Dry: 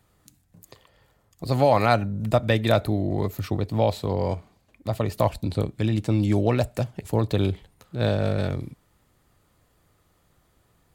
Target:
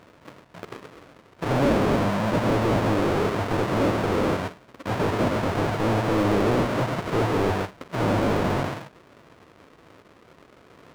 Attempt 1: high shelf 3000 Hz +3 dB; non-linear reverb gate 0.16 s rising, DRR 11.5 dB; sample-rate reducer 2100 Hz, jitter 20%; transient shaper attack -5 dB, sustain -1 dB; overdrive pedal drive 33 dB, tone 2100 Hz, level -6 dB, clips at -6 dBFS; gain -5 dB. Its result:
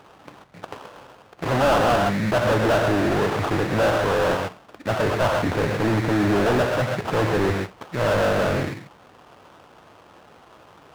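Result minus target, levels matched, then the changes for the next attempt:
sample-rate reducer: distortion -8 dB
change: sample-rate reducer 820 Hz, jitter 20%

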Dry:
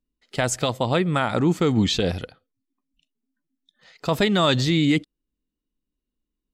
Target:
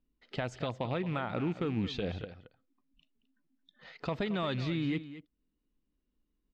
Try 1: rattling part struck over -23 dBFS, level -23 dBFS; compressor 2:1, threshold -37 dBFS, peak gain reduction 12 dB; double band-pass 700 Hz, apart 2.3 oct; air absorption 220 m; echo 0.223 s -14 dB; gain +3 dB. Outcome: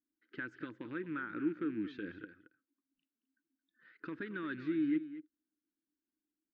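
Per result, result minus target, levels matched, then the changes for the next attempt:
compressor: peak gain reduction -4.5 dB; 500 Hz band -4.5 dB
change: compressor 2:1, threshold -46 dBFS, peak gain reduction 16.5 dB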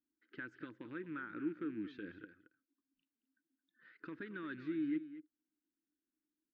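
500 Hz band -4.5 dB
remove: double band-pass 700 Hz, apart 2.3 oct

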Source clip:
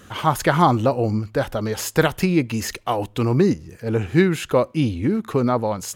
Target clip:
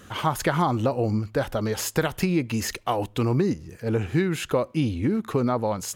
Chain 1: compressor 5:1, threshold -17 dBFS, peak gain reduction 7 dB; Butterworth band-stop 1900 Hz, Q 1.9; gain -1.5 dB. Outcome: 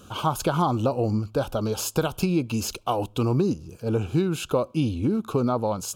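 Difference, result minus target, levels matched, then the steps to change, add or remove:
2000 Hz band -6.0 dB
remove: Butterworth band-stop 1900 Hz, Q 1.9

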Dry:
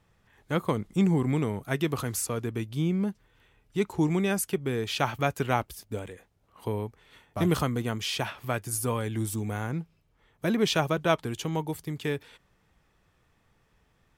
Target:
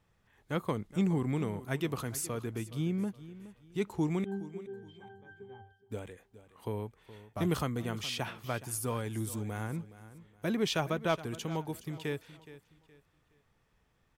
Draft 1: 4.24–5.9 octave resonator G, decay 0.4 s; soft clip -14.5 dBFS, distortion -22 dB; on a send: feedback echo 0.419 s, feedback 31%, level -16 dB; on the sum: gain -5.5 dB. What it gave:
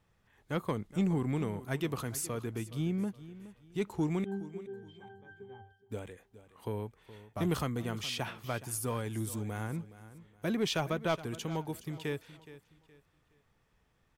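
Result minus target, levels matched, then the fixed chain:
soft clip: distortion +10 dB
4.24–5.9 octave resonator G, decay 0.4 s; soft clip -8 dBFS, distortion -32 dB; on a send: feedback echo 0.419 s, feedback 31%, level -16 dB; on the sum: gain -5.5 dB

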